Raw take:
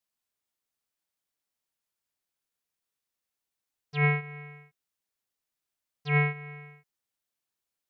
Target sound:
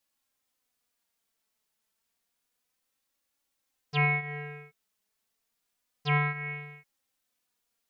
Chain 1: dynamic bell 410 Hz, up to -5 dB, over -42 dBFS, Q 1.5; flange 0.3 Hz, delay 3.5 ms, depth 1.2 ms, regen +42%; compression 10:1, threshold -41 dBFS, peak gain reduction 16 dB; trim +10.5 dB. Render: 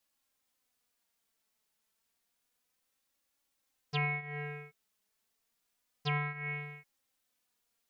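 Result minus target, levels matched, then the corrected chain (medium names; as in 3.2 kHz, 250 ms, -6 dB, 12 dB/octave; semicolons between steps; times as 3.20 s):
compression: peak gain reduction +7.5 dB
dynamic bell 410 Hz, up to -5 dB, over -42 dBFS, Q 1.5; flange 0.3 Hz, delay 3.5 ms, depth 1.2 ms, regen +42%; compression 10:1, threshold -32.5 dBFS, peak gain reduction 8.5 dB; trim +10.5 dB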